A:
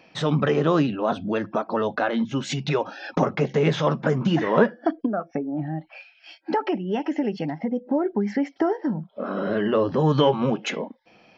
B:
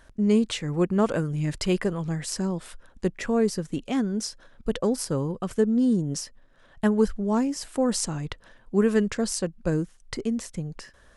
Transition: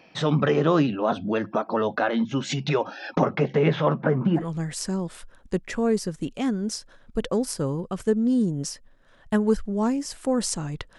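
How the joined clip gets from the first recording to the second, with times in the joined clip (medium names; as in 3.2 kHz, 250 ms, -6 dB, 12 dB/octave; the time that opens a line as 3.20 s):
A
3.15–4.46 s: low-pass 6.1 kHz -> 1.3 kHz
4.40 s: go over to B from 1.91 s, crossfade 0.12 s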